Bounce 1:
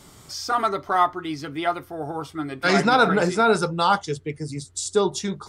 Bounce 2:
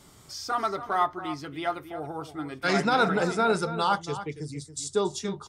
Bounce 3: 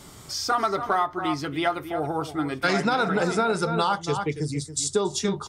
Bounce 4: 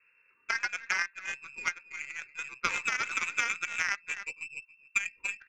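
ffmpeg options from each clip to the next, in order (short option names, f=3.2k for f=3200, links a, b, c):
-filter_complex "[0:a]asplit=2[a][b];[b]adelay=279.9,volume=-12dB,highshelf=f=4k:g=-6.3[c];[a][c]amix=inputs=2:normalize=0,volume=-5.5dB"
-af "acompressor=threshold=-27dB:ratio=12,volume=8dB"
-af "lowpass=f=2.4k:t=q:w=0.5098,lowpass=f=2.4k:t=q:w=0.6013,lowpass=f=2.4k:t=q:w=0.9,lowpass=f=2.4k:t=q:w=2.563,afreqshift=-2800,asuperstop=centerf=700:order=12:qfactor=1.9,aeval=exprs='0.316*(cos(1*acos(clip(val(0)/0.316,-1,1)))-cos(1*PI/2))+0.0891*(cos(3*acos(clip(val(0)/0.316,-1,1)))-cos(3*PI/2))+0.00891*(cos(4*acos(clip(val(0)/0.316,-1,1)))-cos(4*PI/2))+0.00631*(cos(6*acos(clip(val(0)/0.316,-1,1)))-cos(6*PI/2))+0.002*(cos(7*acos(clip(val(0)/0.316,-1,1)))-cos(7*PI/2))':c=same"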